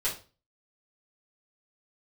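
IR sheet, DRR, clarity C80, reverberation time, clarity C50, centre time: -8.5 dB, 15.5 dB, 0.35 s, 9.0 dB, 22 ms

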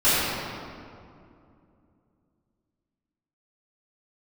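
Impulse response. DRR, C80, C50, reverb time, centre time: -15.0 dB, -2.5 dB, -4.5 dB, 2.5 s, 165 ms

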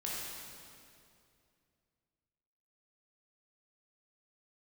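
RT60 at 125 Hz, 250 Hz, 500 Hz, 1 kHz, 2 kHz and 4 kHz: 3.1 s, 2.8 s, 2.7 s, 2.3 s, 2.2 s, 2.0 s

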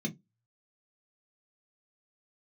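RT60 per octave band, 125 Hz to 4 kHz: 0.25 s, 0.25 s, 0.20 s, 0.15 s, 0.15 s, 0.10 s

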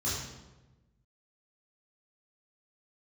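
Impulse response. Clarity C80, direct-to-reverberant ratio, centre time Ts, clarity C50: 3.5 dB, -10.0 dB, 70 ms, 0.5 dB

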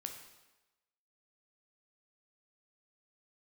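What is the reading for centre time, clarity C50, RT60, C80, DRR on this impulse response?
27 ms, 6.0 dB, 1.1 s, 8.5 dB, 3.5 dB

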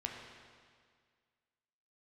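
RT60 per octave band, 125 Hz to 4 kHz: 1.9 s, 1.9 s, 1.9 s, 1.9 s, 1.9 s, 1.8 s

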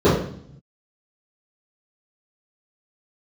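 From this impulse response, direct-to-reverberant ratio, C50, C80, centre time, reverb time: -15.0 dB, 3.5 dB, 7.0 dB, 48 ms, 0.60 s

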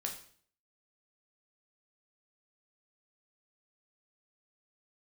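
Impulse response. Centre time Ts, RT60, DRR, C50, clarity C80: 21 ms, 0.50 s, 1.0 dB, 8.0 dB, 12.0 dB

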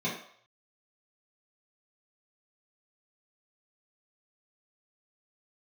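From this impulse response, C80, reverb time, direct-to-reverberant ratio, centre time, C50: 9.5 dB, 0.60 s, -9.0 dB, 34 ms, 5.5 dB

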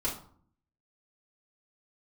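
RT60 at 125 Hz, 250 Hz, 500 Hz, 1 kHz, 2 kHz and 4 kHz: 0.85 s, 0.80 s, 0.50 s, 0.55 s, 0.40 s, 0.35 s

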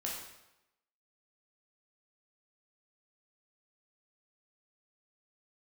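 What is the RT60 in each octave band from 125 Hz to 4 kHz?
0.85 s, 0.85 s, 0.90 s, 0.90 s, 0.85 s, 0.80 s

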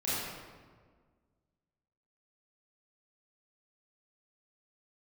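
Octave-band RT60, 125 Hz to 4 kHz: 2.0 s, 2.0 s, 1.7 s, 1.5 s, 1.2 s, 0.95 s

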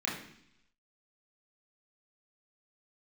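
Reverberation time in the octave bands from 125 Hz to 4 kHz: 0.90 s, 0.85 s, 0.70 s, 0.70 s, 0.85 s, 0.95 s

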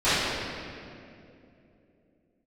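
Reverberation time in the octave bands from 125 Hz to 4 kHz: 3.3 s, 3.7 s, 3.3 s, 2.2 s, 2.1 s, 1.7 s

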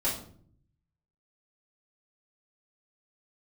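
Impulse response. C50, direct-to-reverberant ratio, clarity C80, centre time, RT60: 6.0 dB, -9.0 dB, 10.5 dB, 31 ms, 0.55 s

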